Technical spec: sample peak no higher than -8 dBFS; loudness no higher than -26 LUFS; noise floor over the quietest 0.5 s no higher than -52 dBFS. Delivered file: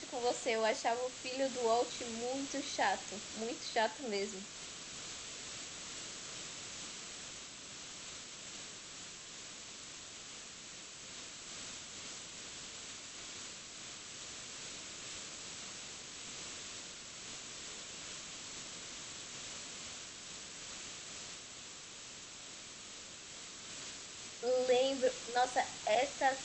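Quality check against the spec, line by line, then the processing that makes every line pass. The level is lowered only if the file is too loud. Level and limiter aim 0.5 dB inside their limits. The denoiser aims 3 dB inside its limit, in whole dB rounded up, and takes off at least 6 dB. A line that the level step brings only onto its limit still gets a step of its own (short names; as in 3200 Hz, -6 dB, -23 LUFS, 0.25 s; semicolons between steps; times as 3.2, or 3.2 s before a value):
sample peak -19.5 dBFS: OK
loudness -40.5 LUFS: OK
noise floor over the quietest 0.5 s -51 dBFS: fail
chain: denoiser 6 dB, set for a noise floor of -51 dBFS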